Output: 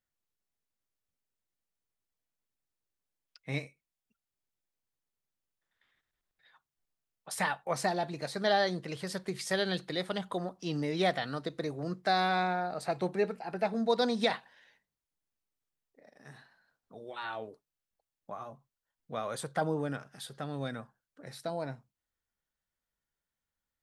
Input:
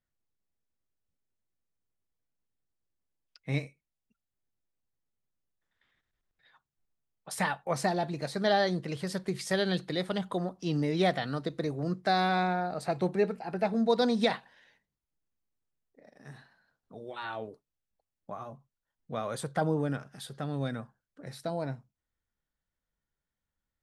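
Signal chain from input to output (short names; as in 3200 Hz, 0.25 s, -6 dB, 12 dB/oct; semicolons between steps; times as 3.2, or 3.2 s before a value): low shelf 340 Hz -6.5 dB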